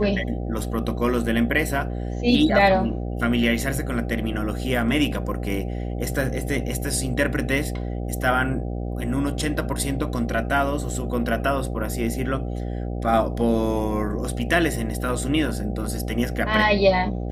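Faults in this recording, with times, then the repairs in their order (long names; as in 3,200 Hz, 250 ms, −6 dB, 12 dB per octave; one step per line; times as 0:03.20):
mains buzz 60 Hz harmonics 13 −28 dBFS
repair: hum removal 60 Hz, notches 13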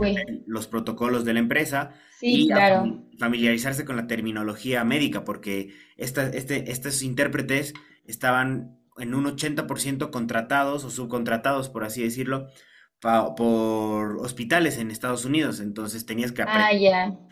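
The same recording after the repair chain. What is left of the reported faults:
none of them is left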